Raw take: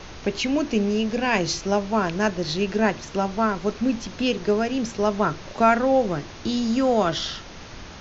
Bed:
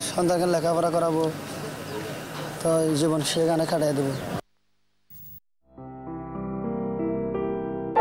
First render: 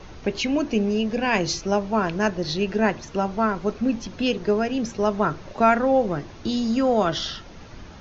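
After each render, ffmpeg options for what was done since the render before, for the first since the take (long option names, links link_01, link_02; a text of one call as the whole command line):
ffmpeg -i in.wav -af "afftdn=noise_reduction=8:noise_floor=-40" out.wav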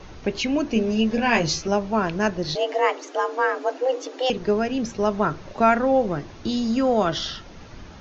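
ffmpeg -i in.wav -filter_complex "[0:a]asettb=1/sr,asplit=3[link_01][link_02][link_03];[link_01]atrim=end=0.754[link_04];[link_02]atrim=start=0.75:end=1.68,asetpts=PTS-STARTPTS,afade=type=in:duration=0.004:curve=qsin,afade=type=out:start_time=0.926:duration=0.004:curve=qsin,asplit=2[link_05][link_06];[link_06]adelay=13,volume=-2.5dB[link_07];[link_05][link_07]amix=inputs=2:normalize=0,atrim=end_sample=41013[link_08];[link_03]atrim=start=1.676[link_09];[link_04][link_08]acrossfade=duration=0.004:curve1=hsin:curve2=qsin[link_10];[link_10][link_09]acrossfade=duration=0.004:curve1=qsin:curve2=hsin,asettb=1/sr,asplit=3[link_11][link_12][link_13];[link_11]atrim=end=2.554[link_14];[link_12]atrim=start=2.55:end=4.3,asetpts=PTS-STARTPTS,afade=type=in:duration=0.004:curve=qsin,afade=type=out:start_time=1.746:duration=0.004:curve=qsin,afreqshift=260[link_15];[link_13]atrim=start=4.296[link_16];[link_14][link_15]acrossfade=duration=0.004:curve1=hsin:curve2=qsin[link_17];[link_17][link_16]acrossfade=duration=0.004:curve1=qsin:curve2=hsin" out.wav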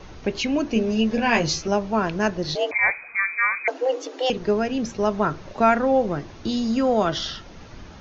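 ffmpeg -i in.wav -filter_complex "[0:a]asettb=1/sr,asplit=3[link_01][link_02][link_03];[link_01]atrim=end=2.714[link_04];[link_02]atrim=start=2.71:end=3.68,asetpts=PTS-STARTPTS,afade=type=in:duration=0.004:curve=qsin,afade=type=out:start_time=0.966:duration=0.004:curve=qsin,lowpass=frequency=2400:width_type=q:width=0.5098,lowpass=frequency=2400:width_type=q:width=0.6013,lowpass=frequency=2400:width_type=q:width=0.9,lowpass=frequency=2400:width_type=q:width=2.563,afreqshift=-2800[link_05];[link_03]atrim=start=3.676[link_06];[link_04][link_05]acrossfade=duration=0.004:curve1=hsin:curve2=qsin[link_07];[link_07][link_06]acrossfade=duration=0.004:curve1=qsin:curve2=hsin" out.wav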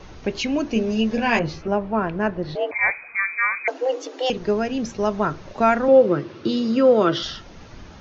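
ffmpeg -i in.wav -filter_complex "[0:a]asettb=1/sr,asplit=3[link_01][link_02][link_03];[link_01]atrim=end=1.394[link_04];[link_02]atrim=start=1.39:end=2.81,asetpts=PTS-STARTPTS,afade=type=in:duration=0.004:curve=qsin,afade=type=out:start_time=1.416:duration=0.004:curve=qsin,lowpass=2100[link_05];[link_03]atrim=start=2.806[link_06];[link_04][link_05]acrossfade=duration=0.004:curve1=hsin:curve2=qsin[link_07];[link_07][link_06]acrossfade=duration=0.004:curve1=qsin:curve2=hsin,asettb=1/sr,asplit=3[link_08][link_09][link_10];[link_08]atrim=end=5.884[link_11];[link_09]atrim=start=5.88:end=7.23,asetpts=PTS-STARTPTS,afade=type=in:duration=0.004:curve=qsin,afade=type=out:start_time=1.346:duration=0.004:curve=qsin,highpass=frequency=110:width=0.5412,highpass=frequency=110:width=1.3066,equalizer=frequency=130:width_type=q:width=4:gain=5,equalizer=frequency=350:width_type=q:width=4:gain=10,equalizer=frequency=520:width_type=q:width=4:gain=8,equalizer=frequency=740:width_type=q:width=4:gain=-7,equalizer=frequency=1300:width_type=q:width=4:gain=6,equalizer=frequency=2800:width_type=q:width=4:gain=3,lowpass=frequency=5400:width=0.5412,lowpass=frequency=5400:width=1.3066[link_12];[link_10]atrim=start=7.226[link_13];[link_11][link_12]acrossfade=duration=0.004:curve1=hsin:curve2=qsin[link_14];[link_14][link_13]acrossfade=duration=0.004:curve1=qsin:curve2=hsin" out.wav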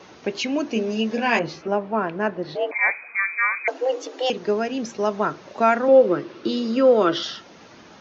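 ffmpeg -i in.wav -af "highpass=230" out.wav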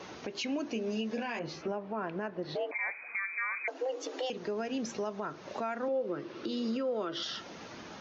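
ffmpeg -i in.wav -af "acompressor=threshold=-33dB:ratio=2.5,alimiter=level_in=2dB:limit=-24dB:level=0:latency=1:release=119,volume=-2dB" out.wav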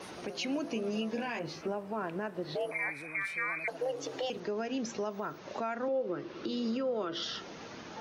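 ffmpeg -i in.wav -i bed.wav -filter_complex "[1:a]volume=-26dB[link_01];[0:a][link_01]amix=inputs=2:normalize=0" out.wav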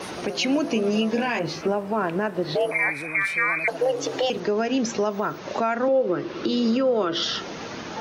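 ffmpeg -i in.wav -af "volume=11.5dB" out.wav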